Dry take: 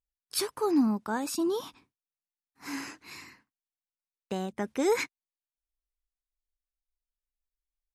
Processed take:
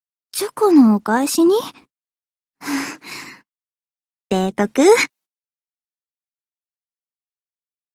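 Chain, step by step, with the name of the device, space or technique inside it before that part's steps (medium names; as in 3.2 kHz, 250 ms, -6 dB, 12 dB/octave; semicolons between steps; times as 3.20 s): video call (high-pass 130 Hz 24 dB/octave; level rider gain up to 11 dB; gate -48 dBFS, range -29 dB; trim +4 dB; Opus 20 kbps 48 kHz)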